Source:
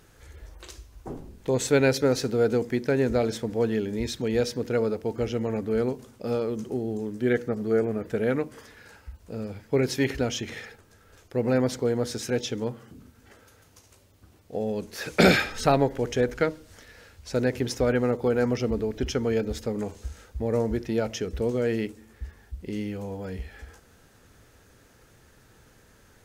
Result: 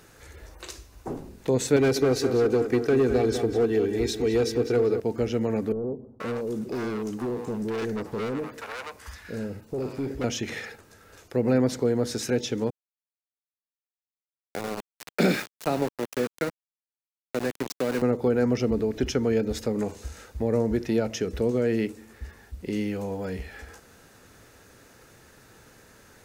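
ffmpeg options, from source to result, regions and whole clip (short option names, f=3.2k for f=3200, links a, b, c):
-filter_complex "[0:a]asettb=1/sr,asplit=3[a][b][c];[a]atrim=end=1.764[d];[b]atrim=start=1.76:end=5,asetpts=PTS-STARTPTS,afade=t=in:d=0.004:c=qsin,afade=t=out:st=3.236:d=0.004:c=qsin,aecho=1:1:2.6:0.62,atrim=end_sample=142884,asoftclip=type=hard:threshold=-18dB,asplit=2[e][f];[f]adelay=198,lowpass=f=3.7k:p=1,volume=-9dB,asplit=2[g][h];[h]adelay=198,lowpass=f=3.7k:p=1,volume=0.46,asplit=2[i][j];[j]adelay=198,lowpass=f=3.7k:p=1,volume=0.46,asplit=2[k][l];[l]adelay=198,lowpass=f=3.7k:p=1,volume=0.46,asplit=2[m][n];[n]adelay=198,lowpass=f=3.7k:p=1,volume=0.46[o];[e][g][i][k][m][o]amix=inputs=6:normalize=0,atrim=end_sample=142884[p];[c]atrim=start=4.996[q];[d][p]acrossfade=d=0.004:c1=hsin:c2=qsin[r];[r][q]acrossfade=d=0.004:c1=qsin:c2=hsin,asettb=1/sr,asplit=3[s][t][u];[s]atrim=end=5.724[v];[t]atrim=start=5.72:end=10.24,asetpts=PTS-STARTPTS,afade=t=in:d=0.004:c=qsin,afade=t=out:st=4.516:d=0.004:c=qsin,volume=29.5dB,asoftclip=hard,volume=-29.5dB,acrossover=split=670[w][x];[x]adelay=480[y];[w][y]amix=inputs=2:normalize=0,atrim=end_sample=199332[z];[u]atrim=start=10.236[aa];[v][z]acrossfade=d=0.004:c1=hsin:c2=qsin[ab];[ab][aa]acrossfade=d=0.004:c1=qsin:c2=hsin,asettb=1/sr,asplit=3[ac][ad][ae];[ac]atrim=end=12.704[af];[ad]atrim=start=12.7:end=18.02,asetpts=PTS-STARTPTS,afade=t=in:d=0.004:c=qsin,afade=t=out:st=5.316:d=0.004:c=qsin,highpass=f=150:w=0.5412,highpass=f=150:w=1.3066,flanger=delay=4.8:depth=9:regen=-84:speed=1.2:shape=triangular,aeval=exprs='val(0)*gte(abs(val(0)),0.0335)':c=same[ag];[ae]atrim=start=18.016[ah];[af][ag]acrossfade=d=0.004:c1=hsin:c2=qsin[ai];[ai][ah]acrossfade=d=0.004:c1=qsin:c2=hsin,lowshelf=f=110:g=-9,bandreject=f=3.2k:w=17,acrossover=split=380[aj][ak];[ak]acompressor=threshold=-37dB:ratio=2[al];[aj][al]amix=inputs=2:normalize=0,volume=5dB"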